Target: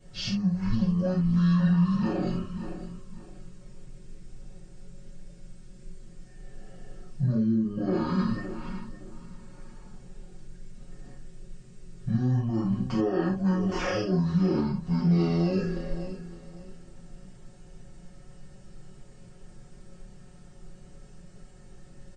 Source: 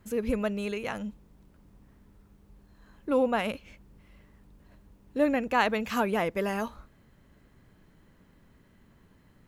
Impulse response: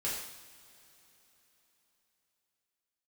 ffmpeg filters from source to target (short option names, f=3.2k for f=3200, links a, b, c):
-filter_complex "[0:a]equalizer=f=125:t=o:w=1:g=-5,equalizer=f=2k:t=o:w=1:g=-10,equalizer=f=8k:t=o:w=1:g=-4,acompressor=threshold=-30dB:ratio=6,aecho=1:1:241|482|723:0.158|0.0428|0.0116,asetrate=18846,aresample=44100,bandreject=f=50:t=h:w=6,bandreject=f=100:t=h:w=6,aecho=1:1:5.5:0.97,alimiter=level_in=7dB:limit=-24dB:level=0:latency=1:release=26,volume=-7dB[a];[1:a]atrim=start_sample=2205,atrim=end_sample=3969[b];[a][b]afir=irnorm=-1:irlink=0,volume=8.5dB"